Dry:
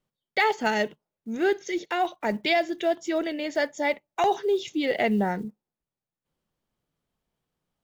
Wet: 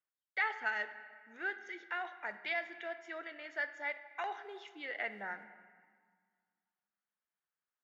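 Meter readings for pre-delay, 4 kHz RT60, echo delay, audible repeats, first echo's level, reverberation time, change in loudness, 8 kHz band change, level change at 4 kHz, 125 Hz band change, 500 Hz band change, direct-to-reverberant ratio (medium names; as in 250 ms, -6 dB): 3 ms, 1.1 s, no echo, no echo, no echo, 1.7 s, -13.0 dB, no reading, -16.5 dB, under -25 dB, -20.5 dB, 10.0 dB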